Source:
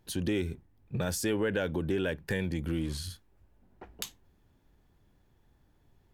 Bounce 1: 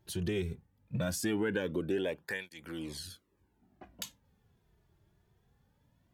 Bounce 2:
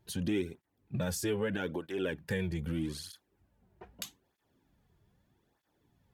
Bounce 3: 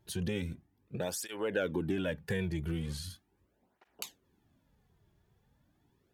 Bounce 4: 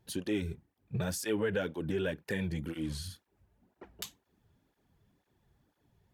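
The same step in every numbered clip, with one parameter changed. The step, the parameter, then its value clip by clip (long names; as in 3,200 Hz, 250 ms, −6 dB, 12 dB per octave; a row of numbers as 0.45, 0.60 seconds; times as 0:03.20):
through-zero flanger with one copy inverted, nulls at: 0.2, 0.8, 0.39, 2 Hertz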